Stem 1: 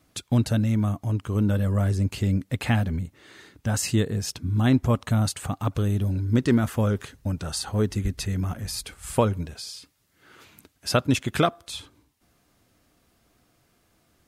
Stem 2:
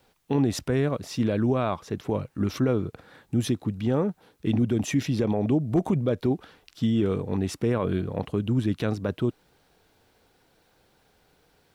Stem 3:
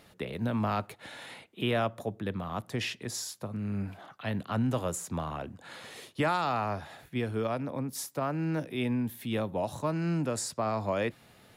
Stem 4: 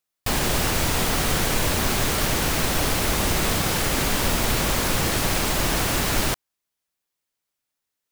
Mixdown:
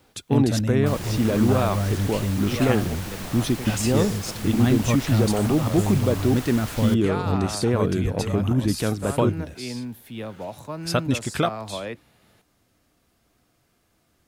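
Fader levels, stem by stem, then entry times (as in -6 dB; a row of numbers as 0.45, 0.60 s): -1.5, +2.5, -2.5, -13.0 dB; 0.00, 0.00, 0.85, 0.60 s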